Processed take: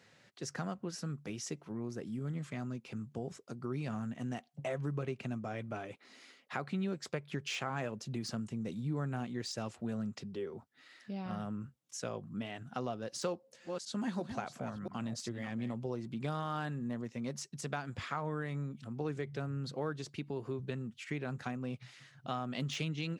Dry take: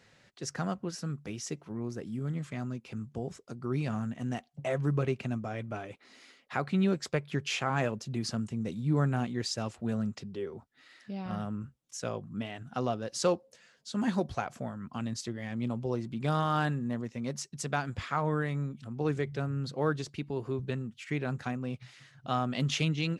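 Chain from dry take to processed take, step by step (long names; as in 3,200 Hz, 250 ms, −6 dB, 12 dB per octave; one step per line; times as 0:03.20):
0:13.17–0:15.74: delay that plays each chunk backwards 342 ms, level −10 dB
de-essing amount 80%
high-pass filter 100 Hz
downward compressor 2.5 to 1, threshold −34 dBFS, peak gain reduction 8.5 dB
level −1.5 dB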